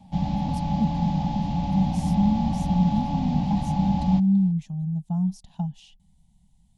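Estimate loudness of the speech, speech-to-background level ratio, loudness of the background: -26.0 LUFS, 0.5 dB, -26.5 LUFS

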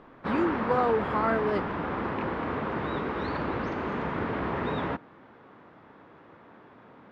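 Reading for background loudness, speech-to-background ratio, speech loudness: -31.5 LUFS, 3.0 dB, -28.5 LUFS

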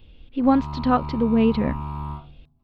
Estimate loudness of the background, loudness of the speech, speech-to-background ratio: -33.0 LUFS, -21.5 LUFS, 11.5 dB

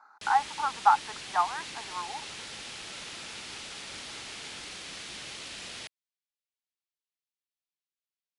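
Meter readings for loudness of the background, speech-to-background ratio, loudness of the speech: -39.5 LUFS, 10.5 dB, -29.0 LUFS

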